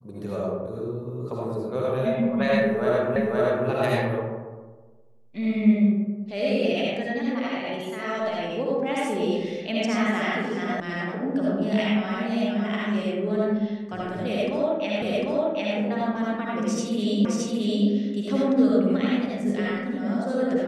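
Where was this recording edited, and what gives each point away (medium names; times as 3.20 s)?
3.16 s: repeat of the last 0.52 s
10.80 s: sound stops dead
15.02 s: repeat of the last 0.75 s
17.25 s: repeat of the last 0.62 s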